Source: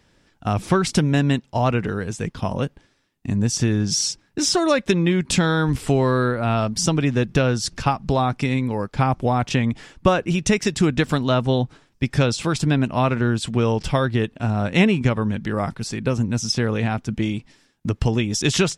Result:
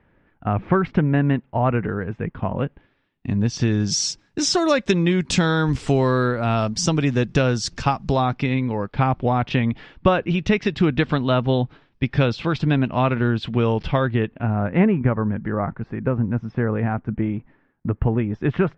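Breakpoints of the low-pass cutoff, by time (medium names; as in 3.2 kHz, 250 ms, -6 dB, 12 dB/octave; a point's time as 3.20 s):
low-pass 24 dB/octave
2.41 s 2.2 kHz
3.51 s 4.5 kHz
3.91 s 7.2 kHz
8.06 s 7.2 kHz
8.49 s 3.8 kHz
13.84 s 3.8 kHz
14.77 s 1.8 kHz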